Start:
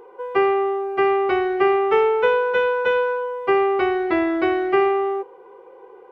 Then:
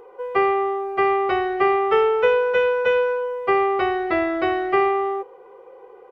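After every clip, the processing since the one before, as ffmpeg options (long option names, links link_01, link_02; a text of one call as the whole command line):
ffmpeg -i in.wav -af "aecho=1:1:1.6:0.38" out.wav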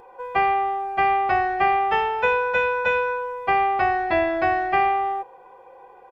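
ffmpeg -i in.wav -af "aecho=1:1:1.2:0.76" out.wav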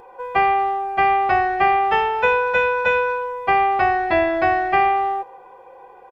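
ffmpeg -i in.wav -filter_complex "[0:a]asplit=2[link_01][link_02];[link_02]adelay=230,highpass=300,lowpass=3400,asoftclip=type=hard:threshold=-18dB,volume=-27dB[link_03];[link_01][link_03]amix=inputs=2:normalize=0,volume=3dB" out.wav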